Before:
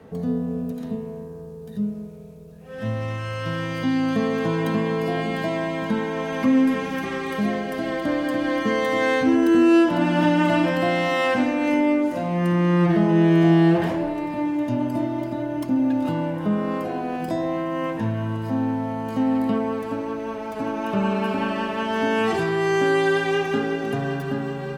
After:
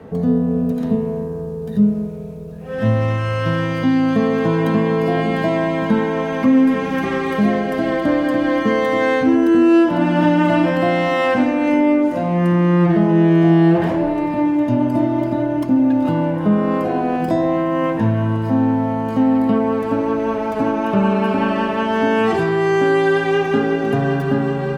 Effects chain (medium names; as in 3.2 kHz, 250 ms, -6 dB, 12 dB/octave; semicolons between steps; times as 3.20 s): in parallel at 0 dB: gain riding 0.5 s; on the sum: treble shelf 2.6 kHz -8 dB